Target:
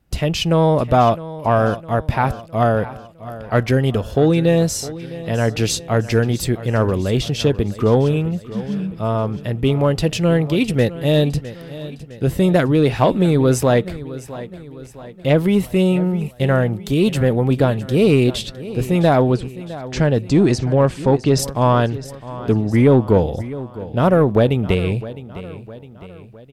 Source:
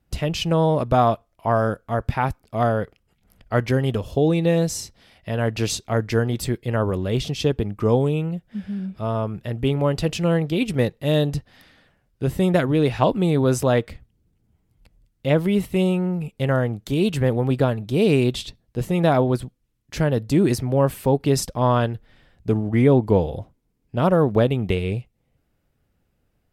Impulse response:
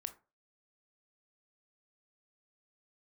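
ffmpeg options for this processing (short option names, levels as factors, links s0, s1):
-filter_complex "[0:a]acontrast=61,asplit=3[s0][s1][s2];[s0]afade=t=out:st=19.31:d=0.02[s3];[s1]lowpass=f=7600:w=0.5412,lowpass=f=7600:w=1.3066,afade=t=in:st=19.31:d=0.02,afade=t=out:st=21.38:d=0.02[s4];[s2]afade=t=in:st=21.38:d=0.02[s5];[s3][s4][s5]amix=inputs=3:normalize=0,aecho=1:1:659|1318|1977|2636:0.158|0.0792|0.0396|0.0198,volume=0.841"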